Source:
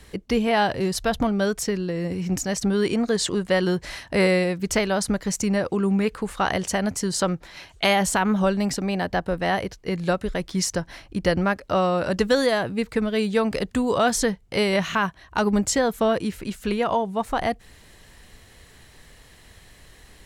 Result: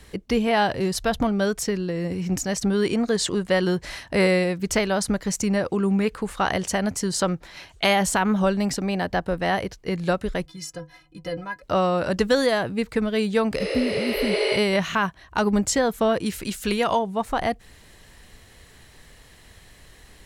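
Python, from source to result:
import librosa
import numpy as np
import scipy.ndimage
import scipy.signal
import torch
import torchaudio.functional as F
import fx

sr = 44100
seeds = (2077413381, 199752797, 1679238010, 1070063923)

y = fx.stiff_resonator(x, sr, f0_hz=150.0, decay_s=0.21, stiffness=0.03, at=(10.45, 11.61), fade=0.02)
y = fx.spec_repair(y, sr, seeds[0], start_s=13.62, length_s=0.92, low_hz=280.0, high_hz=11000.0, source='both')
y = fx.high_shelf(y, sr, hz=2700.0, db=10.0, at=(16.26, 16.99))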